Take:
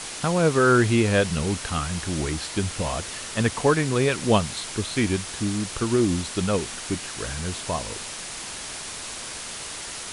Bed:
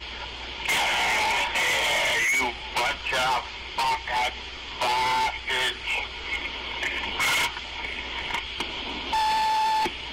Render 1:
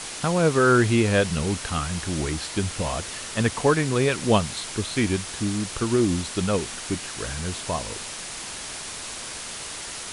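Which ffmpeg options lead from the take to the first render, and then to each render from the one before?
-af anull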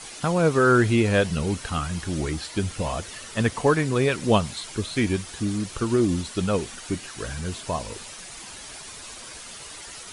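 -af "afftdn=nr=9:nf=-36"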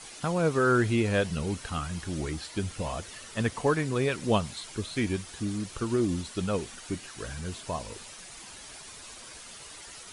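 -af "volume=0.531"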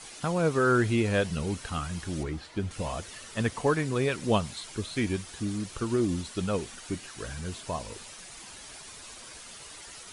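-filter_complex "[0:a]asettb=1/sr,asplit=3[s0][s1][s2];[s0]atrim=end=2.234[s3];[s1]atrim=start=2.23:end=2.71,asetpts=PTS-STARTPTS,afade=t=in:d=0.004:c=qsin,afade=t=out:st=0.476:d=0.004:c=qsin,lowpass=f=2000:p=1[s4];[s2]atrim=start=2.706[s5];[s3][s4]acrossfade=d=0.004:c1=hsin:c2=qsin[s6];[s6][s5]acrossfade=d=0.004:c1=qsin:c2=hsin"

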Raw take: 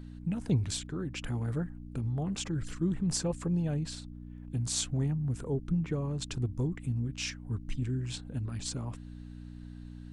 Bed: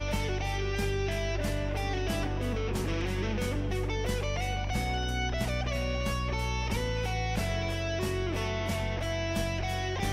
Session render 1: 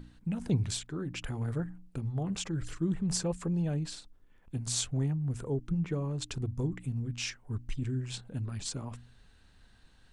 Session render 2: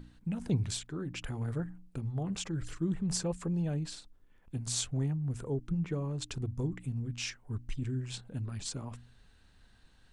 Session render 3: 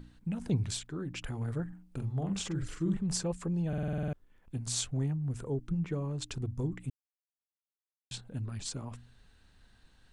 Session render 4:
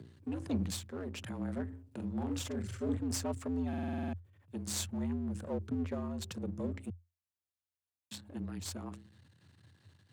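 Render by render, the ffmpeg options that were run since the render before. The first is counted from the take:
-af "bandreject=f=60:t=h:w=4,bandreject=f=120:t=h:w=4,bandreject=f=180:t=h:w=4,bandreject=f=240:t=h:w=4,bandreject=f=300:t=h:w=4"
-af "volume=0.841"
-filter_complex "[0:a]asettb=1/sr,asplit=3[s0][s1][s2];[s0]atrim=end=1.684[s3];[s1]atrim=start=1.68:end=2.97,asetpts=PTS-STARTPTS,afade=t=in:d=0.004:c=qsin,afade=t=out:st=1.286:d=0.004:c=qsin,asplit=2[s4][s5];[s5]adelay=46,volume=0.562[s6];[s4][s6]amix=inputs=2:normalize=0,atrim=end_sample=56889[s7];[s2]atrim=start=2.966[s8];[s3][s7]acrossfade=d=0.004:c1=hsin:c2=qsin[s9];[s9][s8]acrossfade=d=0.004:c1=qsin:c2=hsin,asplit=12[s10][s11][s12][s13][s14][s15][s16][s17][s18][s19][s20][s21];[s10]atrim=end=3.732[s22];[s11]atrim=start=3.678:end=3.732[s23];[s12]atrim=start=3.678:end=3.732[s24];[s13]atrim=start=3.678:end=3.732[s25];[s14]atrim=start=3.678:end=3.732[s26];[s15]atrim=start=3.678:end=3.732[s27];[s16]atrim=start=3.678:end=3.732[s28];[s17]atrim=start=3.678:end=3.732[s29];[s18]atrim=start=3.678:end=3.732[s30];[s19]atrim=start=4.128:end=6.9,asetpts=PTS-STARTPTS,afade=t=out:st=2.768:d=0.004:c=hsin[s31];[s20]atrim=start=6.9:end=8.11,asetpts=PTS-STARTPTS,volume=0[s32];[s21]atrim=start=8.11,asetpts=PTS-STARTPTS,afade=t=in:d=0.004:c=hsin[s33];[s22][s23]acrossfade=d=0.004:c1=hsin:c2=hsin[s34];[s34][s24]acrossfade=d=0.004:c1=hsin:c2=hsin[s35];[s35][s25]acrossfade=d=0.004:c1=hsin:c2=hsin[s36];[s36][s26]acrossfade=d=0.004:c1=hsin:c2=hsin[s37];[s37][s27]acrossfade=d=0.004:c1=hsin:c2=hsin[s38];[s38][s28]acrossfade=d=0.004:c1=hsin:c2=hsin[s39];[s39][s29]acrossfade=d=0.004:c1=hsin:c2=hsin[s40];[s40][s30]acrossfade=d=0.004:c1=hsin:c2=hsin[s41];[s31][s32][s33]concat=n=3:v=0:a=1[s42];[s41][s42]acrossfade=d=0.004:c1=hsin:c2=hsin"
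-af "aeval=exprs='if(lt(val(0),0),0.251*val(0),val(0))':c=same,afreqshift=86"

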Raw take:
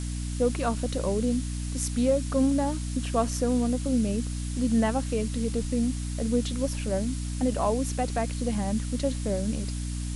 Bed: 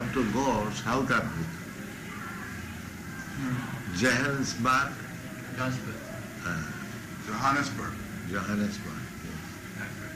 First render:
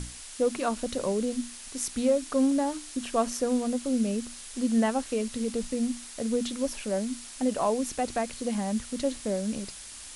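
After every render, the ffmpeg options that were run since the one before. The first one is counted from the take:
-af "bandreject=f=60:t=h:w=6,bandreject=f=120:t=h:w=6,bandreject=f=180:t=h:w=6,bandreject=f=240:t=h:w=6,bandreject=f=300:t=h:w=6"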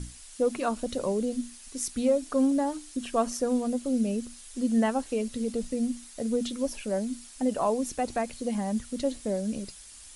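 -af "afftdn=nr=8:nf=-44"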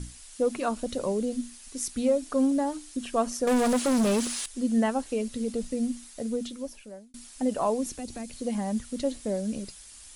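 -filter_complex "[0:a]asettb=1/sr,asplit=3[s0][s1][s2];[s0]atrim=end=3.474[s3];[s1]atrim=start=3.47:end=4.46,asetpts=PTS-STARTPTS,afade=t=in:d=0.004:c=qsin,afade=t=out:st=0.986:d=0.004:c=qsin,asplit=2[s4][s5];[s5]highpass=f=720:p=1,volume=20,asoftclip=type=tanh:threshold=0.15[s6];[s4][s6]amix=inputs=2:normalize=0,lowpass=f=6300:p=1,volume=0.501[s7];[s2]atrim=start=4.456[s8];[s3][s7]acrossfade=d=0.004:c1=hsin:c2=qsin[s9];[s9][s8]acrossfade=d=0.004:c1=qsin:c2=hsin,asettb=1/sr,asplit=3[s10][s11][s12];[s10]atrim=end=7.864[s13];[s11]atrim=start=7.86:end=8.36,asetpts=PTS-STARTPTS,afade=t=in:d=0.004:c=qsin,afade=t=out:st=0.496:d=0.004:c=qsin,acrossover=split=300|3000[s14][s15][s16];[s15]acompressor=threshold=0.00447:ratio=3:attack=3.2:release=140:knee=2.83:detection=peak[s17];[s14][s17][s16]amix=inputs=3:normalize=0[s18];[s12]atrim=start=8.356[s19];[s13][s18]acrossfade=d=0.004:c1=hsin:c2=qsin[s20];[s20][s19]acrossfade=d=0.004:c1=qsin:c2=hsin,asplit=2[s21][s22];[s21]atrim=end=7.14,asetpts=PTS-STARTPTS,afade=t=out:st=6.06:d=1.08[s23];[s22]atrim=start=7.14,asetpts=PTS-STARTPTS,afade=t=in:d=0.004:c=hsin[s24];[s23][s24]concat=n=2:v=0:a=1"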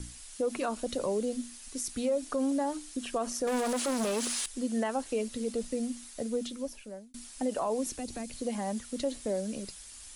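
-filter_complex "[0:a]acrossover=split=290|780|2300[s0][s1][s2][s3];[s0]acompressor=threshold=0.01:ratio=6[s4];[s4][s1][s2][s3]amix=inputs=4:normalize=0,alimiter=limit=0.0794:level=0:latency=1:release=48"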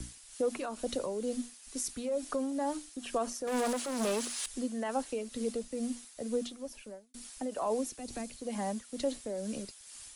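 -filter_complex "[0:a]tremolo=f=2.2:d=0.51,acrossover=split=300|570|2500[s0][s1][s2][s3];[s0]aeval=exprs='sgn(val(0))*max(abs(val(0))-0.00112,0)':c=same[s4];[s4][s1][s2][s3]amix=inputs=4:normalize=0"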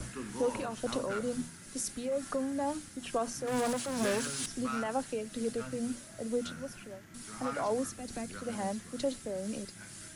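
-filter_complex "[1:a]volume=0.2[s0];[0:a][s0]amix=inputs=2:normalize=0"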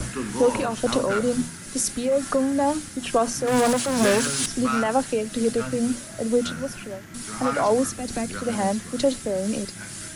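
-af "volume=3.76"

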